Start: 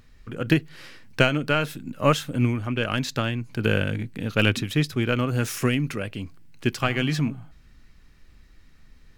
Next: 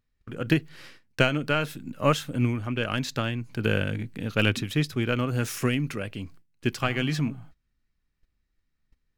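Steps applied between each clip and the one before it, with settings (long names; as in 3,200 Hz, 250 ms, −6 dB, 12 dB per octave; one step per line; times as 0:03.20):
noise gate −43 dBFS, range −21 dB
level −2.5 dB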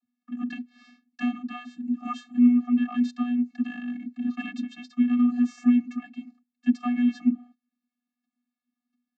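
in parallel at −2 dB: downward compressor, threshold −32 dBFS, peak gain reduction 16 dB
on the sum: channel vocoder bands 32, square 244 Hz
level +1 dB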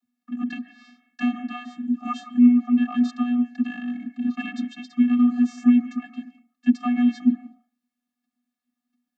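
on a send at −12 dB: low-pass with resonance 1,900 Hz, resonance Q 2.8 + convolution reverb RT60 0.25 s, pre-delay 105 ms
on the sum: level +3.5 dB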